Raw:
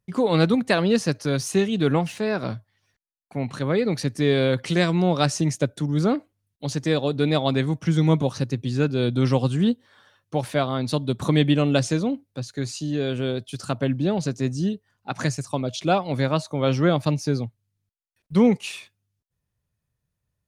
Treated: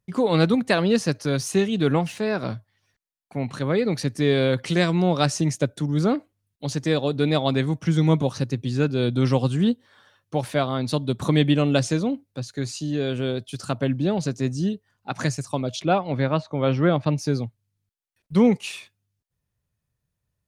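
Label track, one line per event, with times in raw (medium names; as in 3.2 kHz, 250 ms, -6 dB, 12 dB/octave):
15.820000	17.180000	low-pass 3.1 kHz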